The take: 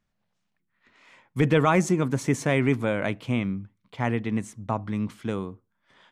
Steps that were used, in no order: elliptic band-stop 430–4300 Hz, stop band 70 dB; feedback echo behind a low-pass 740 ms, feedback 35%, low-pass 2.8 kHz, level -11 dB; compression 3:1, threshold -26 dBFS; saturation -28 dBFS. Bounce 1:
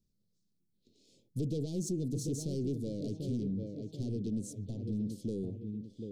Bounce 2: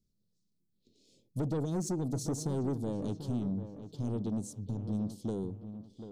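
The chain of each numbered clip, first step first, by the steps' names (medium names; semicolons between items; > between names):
feedback echo behind a low-pass > compression > saturation > elliptic band-stop; elliptic band-stop > compression > saturation > feedback echo behind a low-pass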